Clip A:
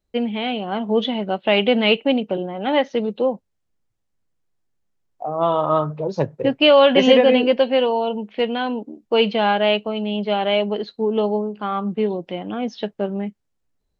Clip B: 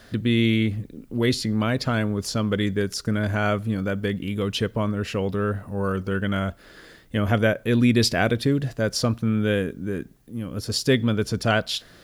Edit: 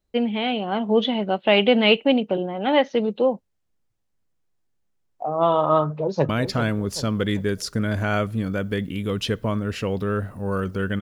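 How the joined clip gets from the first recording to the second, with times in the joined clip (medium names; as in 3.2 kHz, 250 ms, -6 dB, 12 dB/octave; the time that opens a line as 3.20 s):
clip A
5.85–6.29 s: echo throw 390 ms, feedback 45%, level -10.5 dB
6.29 s: go over to clip B from 1.61 s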